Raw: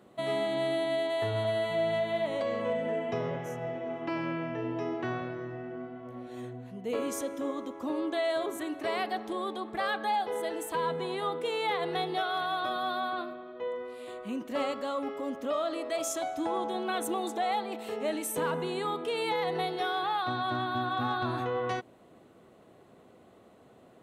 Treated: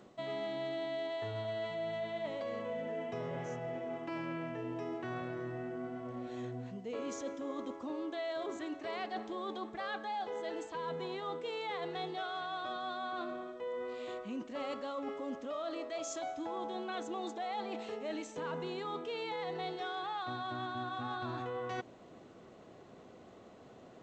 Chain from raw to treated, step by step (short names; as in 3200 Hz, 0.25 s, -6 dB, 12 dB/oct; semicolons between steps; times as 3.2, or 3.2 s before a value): reverse; compressor 5:1, threshold -39 dBFS, peak gain reduction 12 dB; reverse; gain +1.5 dB; G.722 64 kbps 16000 Hz